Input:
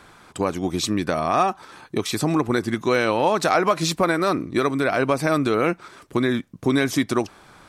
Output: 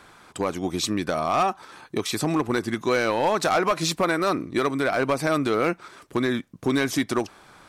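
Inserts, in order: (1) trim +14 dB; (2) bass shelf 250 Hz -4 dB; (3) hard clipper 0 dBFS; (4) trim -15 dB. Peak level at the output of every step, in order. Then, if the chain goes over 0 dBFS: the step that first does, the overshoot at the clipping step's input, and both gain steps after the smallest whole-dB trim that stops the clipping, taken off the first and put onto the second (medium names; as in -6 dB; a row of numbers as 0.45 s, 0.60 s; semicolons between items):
+7.5 dBFS, +7.5 dBFS, 0.0 dBFS, -15.0 dBFS; step 1, 7.5 dB; step 1 +6 dB, step 4 -7 dB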